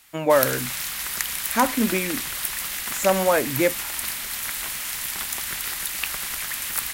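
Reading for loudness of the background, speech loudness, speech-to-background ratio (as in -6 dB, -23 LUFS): -26.5 LUFS, -23.0 LUFS, 3.5 dB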